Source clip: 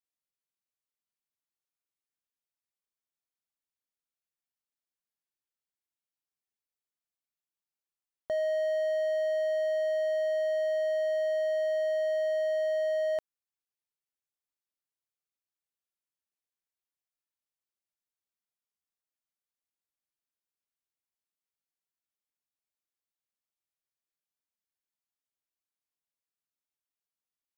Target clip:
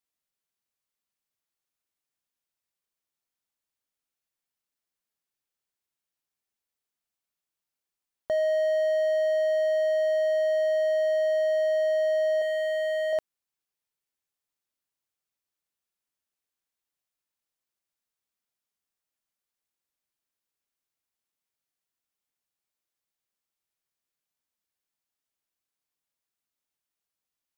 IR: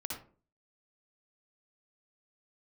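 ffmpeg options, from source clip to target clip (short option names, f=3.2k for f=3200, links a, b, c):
-filter_complex "[0:a]asettb=1/sr,asplit=3[a][b][c];[a]atrim=end=12.404[d];[b]atrim=start=12.4:end=13.13,asetpts=PTS-STARTPTS,afade=t=in:d=0.004:c=qsin,afade=t=out:st=0.726:d=0.004:c=qsin,asplit=2[e][f];[f]adelay=15,volume=-3dB[g];[e][g]amix=inputs=2:normalize=0,atrim=end_sample=32193[h];[c]atrim=start=13.126[i];[d][h]acrossfade=d=0.004:c1=hsin:c2=qsin[j];[j][i]acrossfade=d=0.004:c1=qsin:c2=hsin,volume=4.5dB"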